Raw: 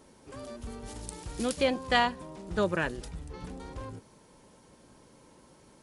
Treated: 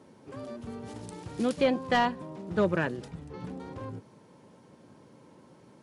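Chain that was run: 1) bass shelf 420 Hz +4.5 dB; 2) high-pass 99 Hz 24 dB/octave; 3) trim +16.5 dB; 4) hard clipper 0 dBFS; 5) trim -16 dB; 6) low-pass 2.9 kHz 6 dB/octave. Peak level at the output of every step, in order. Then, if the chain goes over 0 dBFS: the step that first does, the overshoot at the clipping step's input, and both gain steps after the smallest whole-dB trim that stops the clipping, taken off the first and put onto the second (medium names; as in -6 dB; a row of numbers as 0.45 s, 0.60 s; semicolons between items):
-10.0 dBFS, -8.5 dBFS, +8.0 dBFS, 0.0 dBFS, -16.0 dBFS, -16.0 dBFS; step 3, 8.0 dB; step 3 +8.5 dB, step 5 -8 dB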